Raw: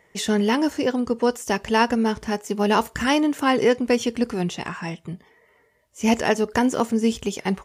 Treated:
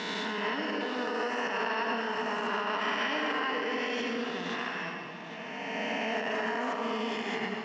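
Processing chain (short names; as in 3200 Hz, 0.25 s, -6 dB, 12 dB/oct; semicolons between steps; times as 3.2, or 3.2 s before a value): spectral swells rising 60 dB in 2.45 s; reverb RT60 1.3 s, pre-delay 50 ms, DRR 3.5 dB; limiter -10.5 dBFS, peak gain reduction 10 dB; speaker cabinet 350–4200 Hz, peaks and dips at 360 Hz -9 dB, 540 Hz -6 dB, 830 Hz -6 dB, 3600 Hz -4 dB; notch 530 Hz, Q 12; on a send: echo with dull and thin repeats by turns 0.403 s, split 1000 Hz, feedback 53%, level -6.5 dB; on the sum: gain -7.5 dB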